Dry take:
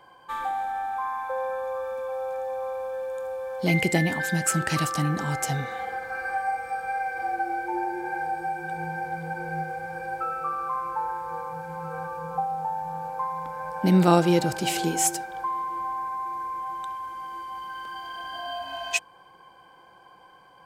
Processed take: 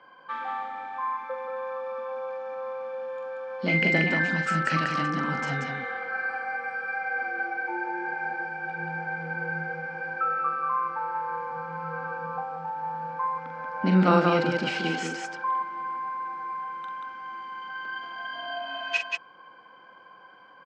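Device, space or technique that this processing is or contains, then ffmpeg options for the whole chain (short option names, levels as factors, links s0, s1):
kitchen radio: -af "highpass=220,equalizer=f=250:t=q:w=4:g=6,equalizer=f=350:t=q:w=4:g=-7,equalizer=f=800:t=q:w=4:g=-8,equalizer=f=1400:t=q:w=4:g=6,equalizer=f=3700:t=q:w=4:g=-7,lowpass=f=4300:w=0.5412,lowpass=f=4300:w=1.3066,aecho=1:1:43|184:0.473|0.668"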